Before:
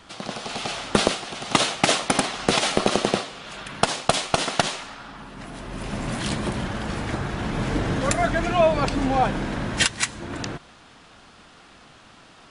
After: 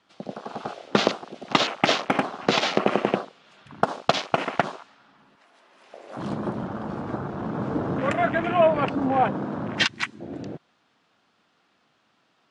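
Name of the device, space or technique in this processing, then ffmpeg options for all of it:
over-cleaned archive recording: -filter_complex "[0:a]asettb=1/sr,asplit=3[a][b][c];[a]atrim=end=5.354[d];[b]atrim=start=5.35:end=6.17,asetpts=PTS-STARTPTS,afade=t=in:d=0.004:c=qsin,afade=t=out:st=0.816:d=0.004:c=qsin,highpass=550[e];[c]atrim=start=6.166[f];[d][e]acrossfade=d=0.004:c1=hsin:c2=qsin[g];[g][f]acrossfade=d=0.004:c1=qsin:c2=hsin,highpass=150,lowpass=6.1k,afwtdn=0.0398"

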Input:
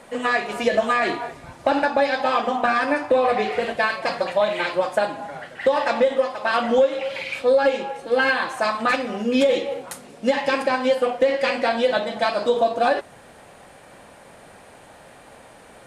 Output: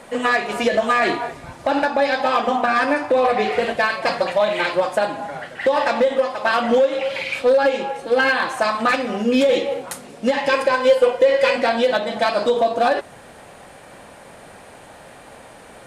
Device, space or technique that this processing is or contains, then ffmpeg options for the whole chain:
limiter into clipper: -filter_complex "[0:a]alimiter=limit=-11.5dB:level=0:latency=1:release=168,asoftclip=type=hard:threshold=-14dB,asettb=1/sr,asplit=3[a][b][c];[a]atrim=end=10.494[d];[b]atrim=start=10.49:end=11.56,asetpts=PTS-STARTPTS,afade=t=in:d=0.004:c=qsin,afade=t=out:st=1.066:d=0.004:c=qsin,aecho=1:1:2:0.54,atrim=end_sample=47187[e];[c]atrim=start=11.556[f];[d][e]acrossfade=d=0.004:c1=hsin:c2=qsin[g];[g][f]acrossfade=d=0.004:c1=qsin:c2=hsin,volume=4dB"

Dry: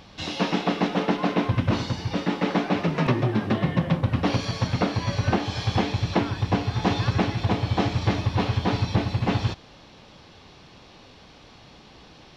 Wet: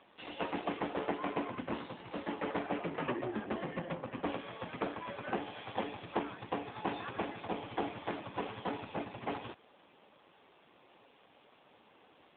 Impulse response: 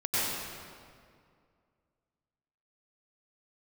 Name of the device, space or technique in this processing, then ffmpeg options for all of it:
telephone: -af "highpass=320,lowpass=3.3k,volume=-7.5dB" -ar 8000 -c:a libopencore_amrnb -b:a 7400

